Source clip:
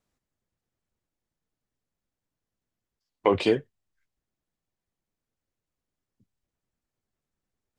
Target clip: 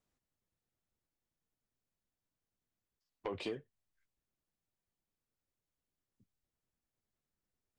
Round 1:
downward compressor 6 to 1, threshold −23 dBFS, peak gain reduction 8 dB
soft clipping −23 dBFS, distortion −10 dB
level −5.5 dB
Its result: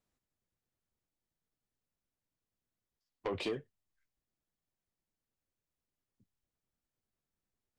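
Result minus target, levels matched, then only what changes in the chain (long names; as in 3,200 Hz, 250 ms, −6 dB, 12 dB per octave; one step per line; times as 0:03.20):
downward compressor: peak gain reduction −5.5 dB
change: downward compressor 6 to 1, threshold −29.5 dBFS, peak gain reduction 13 dB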